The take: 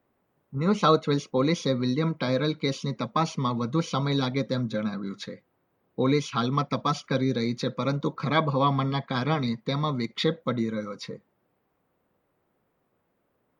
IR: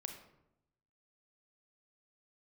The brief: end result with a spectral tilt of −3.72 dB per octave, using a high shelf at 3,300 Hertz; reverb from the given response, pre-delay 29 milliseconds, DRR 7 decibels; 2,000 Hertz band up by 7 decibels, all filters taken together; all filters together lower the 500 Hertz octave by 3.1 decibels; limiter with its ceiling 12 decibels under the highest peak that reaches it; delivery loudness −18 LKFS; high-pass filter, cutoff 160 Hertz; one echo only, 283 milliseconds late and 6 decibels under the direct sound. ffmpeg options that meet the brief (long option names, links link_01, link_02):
-filter_complex "[0:a]highpass=160,equalizer=frequency=500:width_type=o:gain=-4,equalizer=frequency=2000:width_type=o:gain=7.5,highshelf=frequency=3300:gain=4.5,alimiter=limit=-18dB:level=0:latency=1,aecho=1:1:283:0.501,asplit=2[link_01][link_02];[1:a]atrim=start_sample=2205,adelay=29[link_03];[link_02][link_03]afir=irnorm=-1:irlink=0,volume=-4.5dB[link_04];[link_01][link_04]amix=inputs=2:normalize=0,volume=10dB"